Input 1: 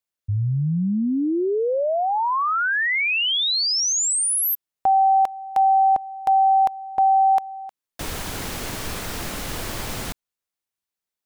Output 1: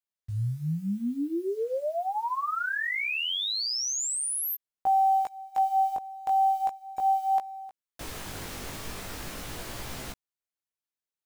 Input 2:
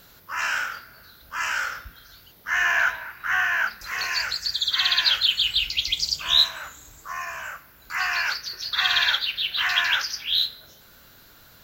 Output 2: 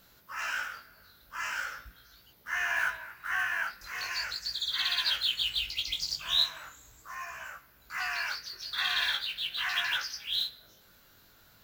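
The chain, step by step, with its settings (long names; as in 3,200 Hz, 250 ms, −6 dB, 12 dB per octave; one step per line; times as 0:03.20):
one scale factor per block 5 bits
chorus effect 0.4 Hz, delay 15.5 ms, depth 5.5 ms
level −5.5 dB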